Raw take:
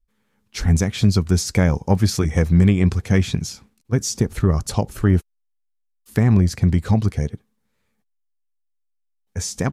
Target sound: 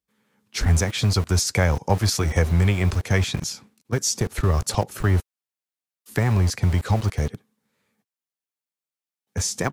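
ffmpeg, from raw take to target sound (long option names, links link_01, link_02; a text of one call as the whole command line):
ffmpeg -i in.wav -filter_complex "[0:a]acrossover=split=100|450|2700[link_01][link_02][link_03][link_04];[link_01]aeval=exprs='val(0)*gte(abs(val(0)),0.0316)':channel_layout=same[link_05];[link_02]acompressor=threshold=-31dB:ratio=6[link_06];[link_05][link_06][link_03][link_04]amix=inputs=4:normalize=0,volume=2dB" out.wav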